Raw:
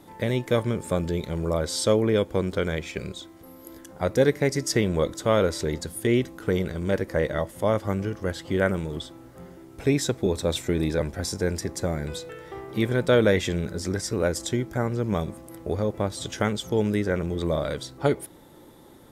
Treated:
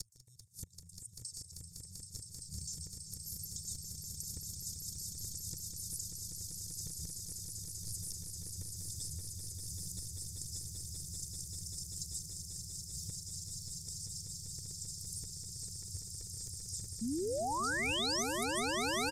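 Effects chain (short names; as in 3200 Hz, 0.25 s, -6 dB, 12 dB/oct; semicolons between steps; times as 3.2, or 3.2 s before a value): slices in reverse order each 89 ms, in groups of 7; HPF 78 Hz 24 dB/oct; wavefolder -13.5 dBFS; Chebyshev band-stop 180–5000 Hz, order 4; band shelf 1600 Hz -13 dB 3 oct; flipped gate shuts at -27 dBFS, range -30 dB; graphic EQ 125/250/1000/2000/4000/8000 Hz -9/-4/-4/+12/+9/+11 dB; AGC gain up to 5.5 dB; comb 2.2 ms, depth 91%; compressor 6:1, threshold -47 dBFS, peak gain reduction 25.5 dB; painted sound rise, 17.01–18.23, 210–6500 Hz -39 dBFS; on a send: swelling echo 0.195 s, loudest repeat 8, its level -6 dB; on the sum: gain +3 dB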